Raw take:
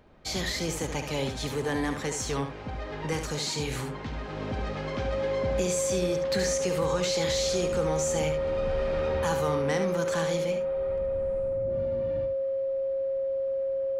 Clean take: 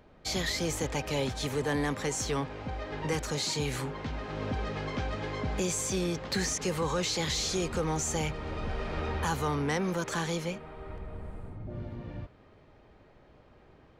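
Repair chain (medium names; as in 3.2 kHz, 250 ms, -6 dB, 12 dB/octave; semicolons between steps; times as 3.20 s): band-stop 540 Hz, Q 30; inverse comb 72 ms -7.5 dB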